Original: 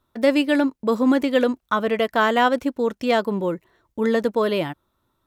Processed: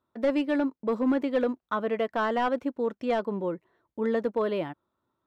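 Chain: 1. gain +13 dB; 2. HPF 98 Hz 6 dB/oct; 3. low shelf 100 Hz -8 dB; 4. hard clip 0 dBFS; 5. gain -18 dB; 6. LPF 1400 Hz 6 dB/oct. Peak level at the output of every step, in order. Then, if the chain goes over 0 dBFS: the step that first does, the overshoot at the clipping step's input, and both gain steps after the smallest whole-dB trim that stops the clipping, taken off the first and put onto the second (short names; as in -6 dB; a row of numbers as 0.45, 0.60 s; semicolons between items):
+7.0, +7.0, +7.5, 0.0, -18.0, -18.0 dBFS; step 1, 7.5 dB; step 1 +5 dB, step 5 -10 dB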